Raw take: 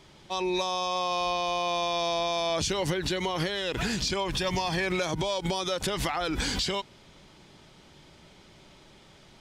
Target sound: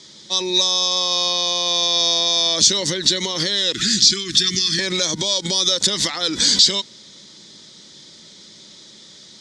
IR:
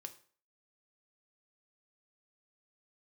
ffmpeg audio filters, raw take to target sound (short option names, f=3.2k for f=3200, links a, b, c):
-filter_complex "[0:a]asettb=1/sr,asplit=3[a][b][c];[a]atrim=end=3.734[d];[b]atrim=start=3.73:end=4.79,asetpts=PTS-STARTPTS,afade=t=in:d=0.004:c=qsin,afade=t=out:st=1.056:d=0.004:c=qsin,asuperstop=centerf=680:order=12:qfactor=0.87[e];[c]atrim=start=4.786[f];[d][e]acrossfade=d=0.004:c1=hsin:c2=qsin[g];[g][f]acrossfade=d=0.004:c1=qsin:c2=hsin,aexciter=amount=8.8:drive=4.5:freq=3.9k,highpass=120,equalizer=f=210:t=q:w=4:g=8,equalizer=f=320:t=q:w=4:g=4,equalizer=f=510:t=q:w=4:g=4,equalizer=f=760:t=q:w=4:g=-7,equalizer=f=1.9k:t=q:w=4:g=7,equalizer=f=3.6k:t=q:w=4:g=7,lowpass=f=6.9k:w=0.5412,lowpass=f=6.9k:w=1.3066,volume=1dB"